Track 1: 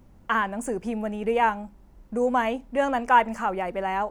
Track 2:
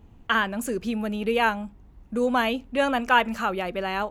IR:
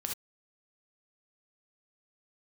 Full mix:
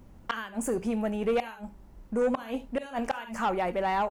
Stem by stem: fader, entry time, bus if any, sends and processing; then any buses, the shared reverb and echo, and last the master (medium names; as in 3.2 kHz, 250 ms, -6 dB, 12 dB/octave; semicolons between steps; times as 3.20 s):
0.0 dB, 0.00 s, send -15 dB, inverted gate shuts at -14 dBFS, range -36 dB
-13.0 dB, 22 ms, send -13 dB, treble shelf 5.8 kHz +9 dB; auto duck -16 dB, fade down 1.35 s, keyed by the first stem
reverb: on, pre-delay 3 ms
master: saturation -20 dBFS, distortion -14 dB